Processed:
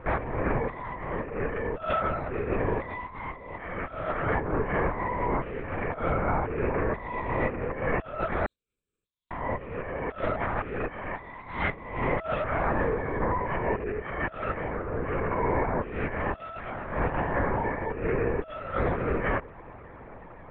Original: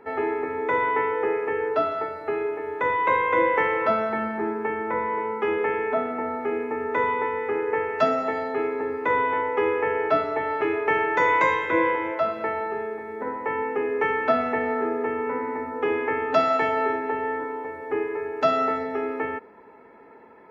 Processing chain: negative-ratio compressor -29 dBFS, ratio -0.5; LPC vocoder at 8 kHz whisper; 8.46–9.31 inverse Chebyshev high-pass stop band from 2100 Hz, stop band 60 dB

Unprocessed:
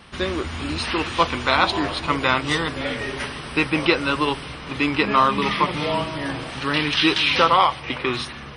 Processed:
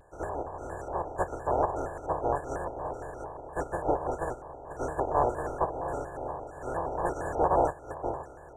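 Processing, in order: spectral contrast lowered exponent 0.17; LFO low-pass square 1.7 Hz 970–2000 Hz; brick-wall FIR band-stop 1600–6200 Hz; fixed phaser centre 520 Hz, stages 4; shaped vibrato square 4.3 Hz, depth 160 cents; gain -1.5 dB

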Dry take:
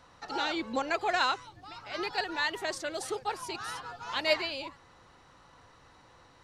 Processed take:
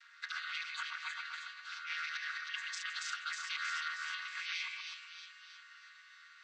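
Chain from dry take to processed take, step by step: chord vocoder minor triad, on D#3; steep high-pass 1500 Hz 48 dB/oct; high shelf 2700 Hz -5.5 dB; negative-ratio compressor -51 dBFS, ratio -1; on a send: split-band echo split 2900 Hz, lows 0.127 s, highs 0.316 s, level -3.5 dB; on the sum: gain +8 dB

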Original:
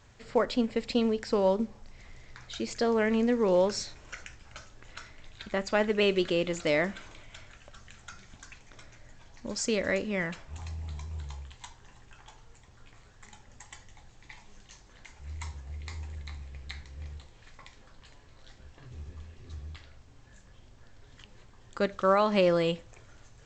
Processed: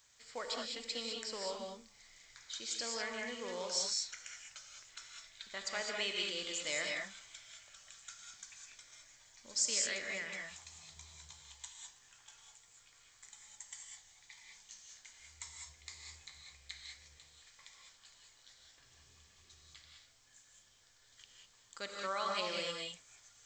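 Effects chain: pre-emphasis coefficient 0.97; notch 2700 Hz, Q 15; non-linear reverb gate 0.23 s rising, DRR 0 dB; gain +2.5 dB

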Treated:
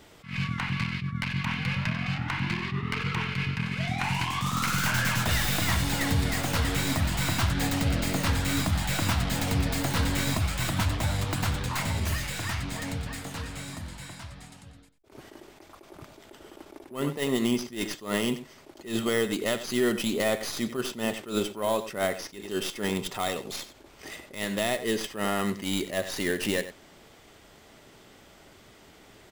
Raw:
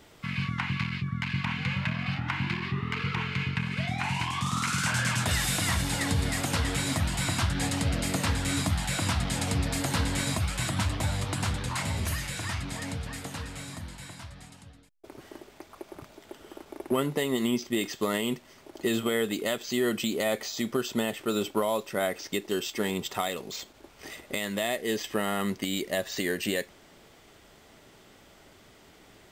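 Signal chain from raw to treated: tracing distortion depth 0.12 ms; outdoor echo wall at 16 m, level -13 dB; attack slew limiter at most 160 dB/s; gain +1.5 dB

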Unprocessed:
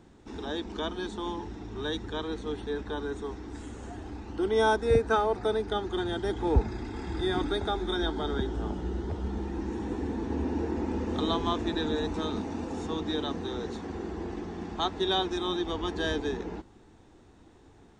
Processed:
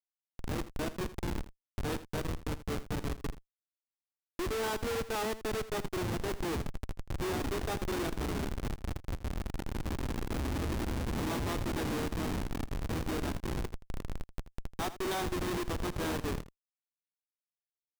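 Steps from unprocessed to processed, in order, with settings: HPF 73 Hz 24 dB/oct; Schmitt trigger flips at -28.5 dBFS; on a send: echo 81 ms -15 dB; on the sum: gain -1.5 dB

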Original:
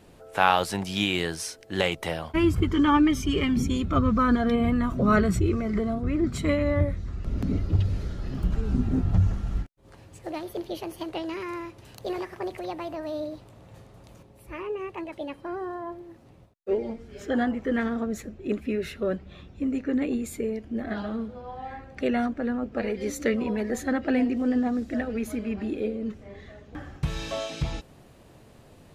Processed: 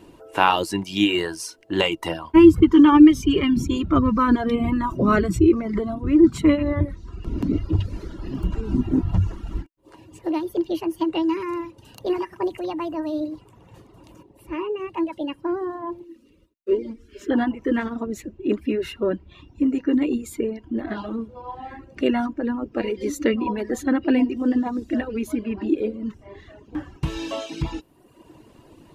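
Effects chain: 16.04–17.31 fixed phaser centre 320 Hz, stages 4; reverb removal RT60 0.95 s; small resonant body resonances 320/970/2800 Hz, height 13 dB, ringing for 45 ms; gain +1.5 dB

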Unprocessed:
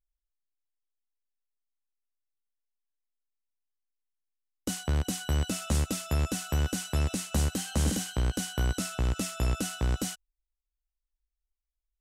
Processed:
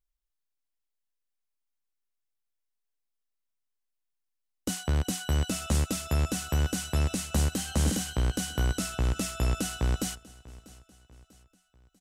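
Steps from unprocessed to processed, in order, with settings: feedback echo 0.643 s, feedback 46%, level -21 dB; gain +1 dB

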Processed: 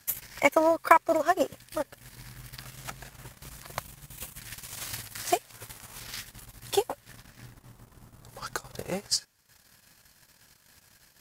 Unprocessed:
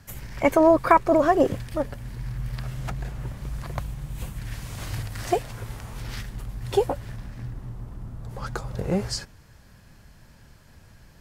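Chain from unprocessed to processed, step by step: transient shaper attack +6 dB, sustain -11 dB; tilt +3.5 dB/oct; gain -5.5 dB

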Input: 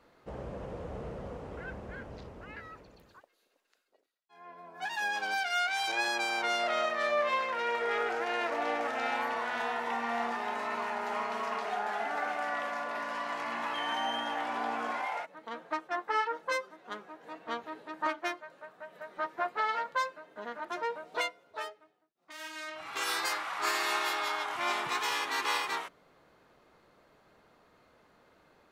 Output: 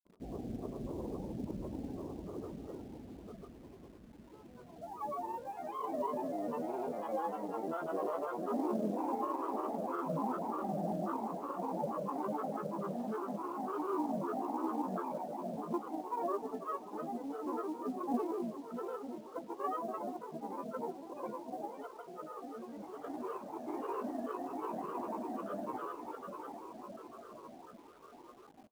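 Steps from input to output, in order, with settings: regenerating reverse delay 0.422 s, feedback 73%, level -5.5 dB; vocal tract filter u; grains 0.1 s, grains 20/s, pitch spread up and down by 7 st; in parallel at -4 dB: companded quantiser 6-bit; on the sum: feedback echo 0.164 s, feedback 55%, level -24 dB; gain +6.5 dB

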